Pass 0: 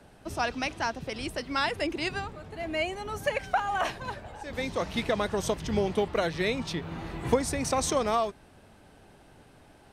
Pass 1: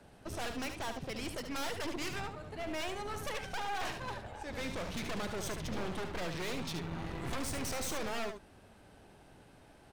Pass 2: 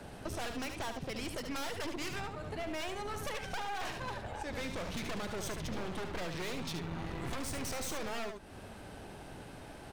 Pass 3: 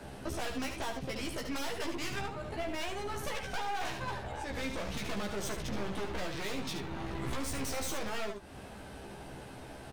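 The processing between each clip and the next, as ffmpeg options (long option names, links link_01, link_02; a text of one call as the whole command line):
ffmpeg -i in.wav -af "aeval=exprs='0.299*(cos(1*acos(clip(val(0)/0.299,-1,1)))-cos(1*PI/2))+0.0944*(cos(6*acos(clip(val(0)/0.299,-1,1)))-cos(6*PI/2))':channel_layout=same,aeval=exprs='clip(val(0),-1,0.0355)':channel_layout=same,aecho=1:1:73:0.422,volume=-4dB" out.wav
ffmpeg -i in.wav -af "acompressor=threshold=-49dB:ratio=3,volume=10dB" out.wav
ffmpeg -i in.wav -filter_complex "[0:a]asplit=2[link_01][link_02];[link_02]adelay=15,volume=-3dB[link_03];[link_01][link_03]amix=inputs=2:normalize=0" out.wav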